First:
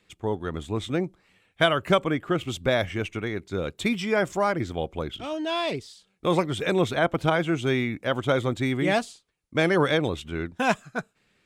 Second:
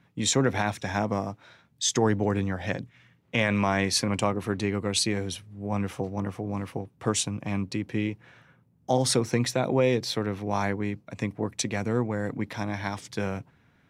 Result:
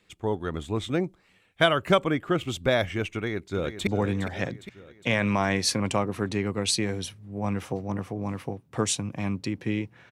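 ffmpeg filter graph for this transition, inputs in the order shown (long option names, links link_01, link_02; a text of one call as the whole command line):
ffmpeg -i cue0.wav -i cue1.wav -filter_complex "[0:a]apad=whole_dur=10.11,atrim=end=10.11,atrim=end=3.872[link_01];[1:a]atrim=start=2.148:end=8.39[link_02];[link_01][link_02]acrossfade=duration=0.004:curve1=hsin:curve2=hsin,asplit=2[link_03][link_04];[link_04]afade=type=in:start_time=3.13:duration=0.01,afade=type=out:start_time=3.87:duration=0.01,aecho=0:1:410|820|1230|1640|2050|2460:0.316228|0.173925|0.0956589|0.0526124|0.0289368|0.0159152[link_05];[link_03][link_05]amix=inputs=2:normalize=0" out.wav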